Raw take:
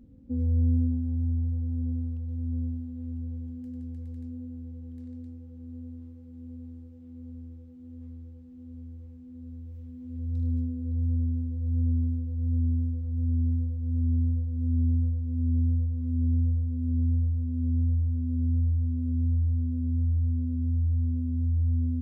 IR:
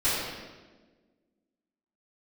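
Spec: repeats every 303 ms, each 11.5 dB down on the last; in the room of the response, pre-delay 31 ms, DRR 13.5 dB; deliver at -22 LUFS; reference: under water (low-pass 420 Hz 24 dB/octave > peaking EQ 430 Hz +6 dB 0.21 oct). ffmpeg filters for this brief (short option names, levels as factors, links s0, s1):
-filter_complex "[0:a]aecho=1:1:303|606|909:0.266|0.0718|0.0194,asplit=2[s0][s1];[1:a]atrim=start_sample=2205,adelay=31[s2];[s1][s2]afir=irnorm=-1:irlink=0,volume=0.0473[s3];[s0][s3]amix=inputs=2:normalize=0,lowpass=f=420:w=0.5412,lowpass=f=420:w=1.3066,equalizer=f=430:t=o:w=0.21:g=6,volume=1.58"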